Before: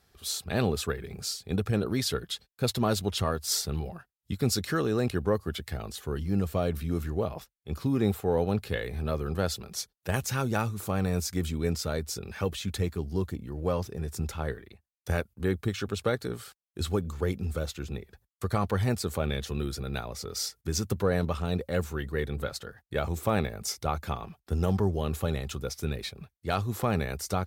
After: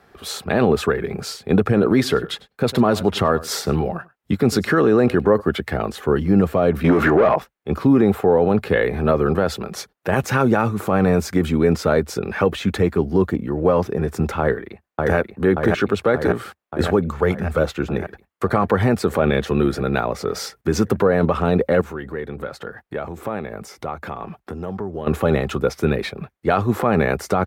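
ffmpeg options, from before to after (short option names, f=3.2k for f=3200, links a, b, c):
-filter_complex "[0:a]asplit=3[a][b][c];[a]afade=t=out:st=1.79:d=0.02[d];[b]aecho=1:1:100:0.075,afade=t=in:st=1.79:d=0.02,afade=t=out:st=5.4:d=0.02[e];[c]afade=t=in:st=5.4:d=0.02[f];[d][e][f]amix=inputs=3:normalize=0,asettb=1/sr,asplit=3[g][h][i];[g]atrim=end=6.844[j];[h]atrim=start=6.84:end=7.36,asetpts=PTS-STARTPTS,afade=t=in:d=0.004:c=qsin,afade=t=out:st=0.516:d=0.004:c=qsin,asplit=2[k][l];[l]highpass=f=720:p=1,volume=25dB,asoftclip=type=tanh:threshold=-16dB[m];[k][m]amix=inputs=2:normalize=0,lowpass=f=2.4k:p=1,volume=-6dB[n];[i]atrim=start=7.356[o];[j][n]acrossfade=d=0.004:c1=hsin:c2=qsin[p];[p][o]acrossfade=d=0.004:c1=qsin:c2=hsin,asplit=2[q][r];[r]afade=t=in:st=14.4:d=0.01,afade=t=out:st=15.16:d=0.01,aecho=0:1:580|1160|1740|2320|2900|3480|4060|4640|5220|5800|6380|6960:0.707946|0.495562|0.346893|0.242825|0.169978|0.118984|0.0832891|0.0583024|0.0408117|0.0285682|0.0199977|0.0139984[s];[q][s]amix=inputs=2:normalize=0,asettb=1/sr,asplit=3[t][u][v];[t]atrim=end=17.104[w];[u]atrim=start=17.1:end=17.59,asetpts=PTS-STARTPTS,afade=t=in:d=0.004:c=qsin,afade=t=out:st=0.486:d=0.004:c=qsin,equalizer=f=300:w=1.7:g=-10.5[x];[v]atrim=start=17.586[y];[w][x]acrossfade=d=0.004:c1=hsin:c2=qsin[z];[z][y]acrossfade=d=0.004:c1=qsin:c2=hsin,asettb=1/sr,asplit=3[aa][ab][ac];[aa]atrim=end=21.814[ad];[ab]atrim=start=21.81:end=25.07,asetpts=PTS-STARTPTS,afade=t=in:d=0.004:c=qsin,afade=t=out:st=3.256:d=0.004:c=qsin,acompressor=threshold=-43dB:ratio=3:attack=3.2:release=140:knee=1:detection=peak[ae];[ac]atrim=start=25.066[af];[ad][ae]acrossfade=d=0.004:c1=hsin:c2=qsin[ag];[ag][af]acrossfade=d=0.004:c1=qsin:c2=hsin,acrossover=split=170 2300:gain=0.224 1 0.141[ah][ai][aj];[ah][ai][aj]amix=inputs=3:normalize=0,alimiter=level_in=23dB:limit=-1dB:release=50:level=0:latency=1,volume=-5.5dB"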